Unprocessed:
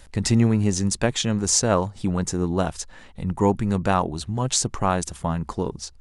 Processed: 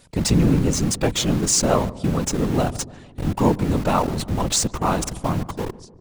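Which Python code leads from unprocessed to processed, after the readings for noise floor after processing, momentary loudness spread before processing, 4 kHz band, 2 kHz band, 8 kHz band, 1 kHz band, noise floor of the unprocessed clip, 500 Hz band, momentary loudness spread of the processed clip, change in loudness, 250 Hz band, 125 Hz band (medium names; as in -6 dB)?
-46 dBFS, 10 LU, +2.0 dB, 0.0 dB, +1.5 dB, +1.5 dB, -47 dBFS, +1.5 dB, 10 LU, +2.0 dB, +2.0 dB, +1.5 dB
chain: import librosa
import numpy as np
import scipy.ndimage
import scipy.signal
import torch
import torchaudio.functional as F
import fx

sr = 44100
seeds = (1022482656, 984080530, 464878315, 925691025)

p1 = fx.fade_out_tail(x, sr, length_s=0.66)
p2 = scipy.signal.sosfilt(scipy.signal.butter(2, 67.0, 'highpass', fs=sr, output='sos'), p1)
p3 = fx.peak_eq(p2, sr, hz=1800.0, db=-6.5, octaves=0.5)
p4 = fx.schmitt(p3, sr, flips_db=-32.0)
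p5 = p3 + F.gain(torch.from_numpy(p4), -6.5).numpy()
p6 = fx.whisperise(p5, sr, seeds[0])
y = p6 + fx.echo_filtered(p6, sr, ms=146, feedback_pct=60, hz=890.0, wet_db=-17, dry=0)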